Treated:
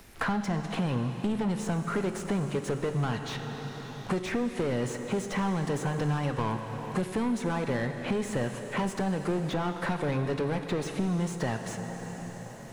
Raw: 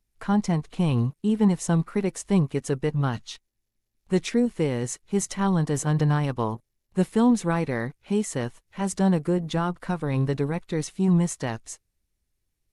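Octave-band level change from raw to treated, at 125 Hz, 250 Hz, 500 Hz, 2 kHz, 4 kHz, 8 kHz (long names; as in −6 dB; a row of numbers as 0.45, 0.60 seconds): −6.0, −6.5, −3.5, +0.5, −1.5, −8.0 decibels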